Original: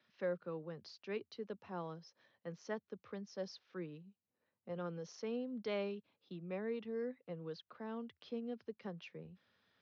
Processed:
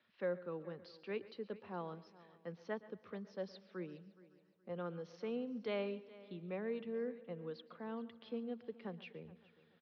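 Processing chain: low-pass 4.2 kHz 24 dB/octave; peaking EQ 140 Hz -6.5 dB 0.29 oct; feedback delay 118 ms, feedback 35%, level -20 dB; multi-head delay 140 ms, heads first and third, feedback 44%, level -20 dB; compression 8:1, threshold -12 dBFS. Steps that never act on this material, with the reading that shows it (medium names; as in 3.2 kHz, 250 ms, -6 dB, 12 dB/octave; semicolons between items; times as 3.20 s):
compression, threshold -12 dBFS: peak at its input -28.0 dBFS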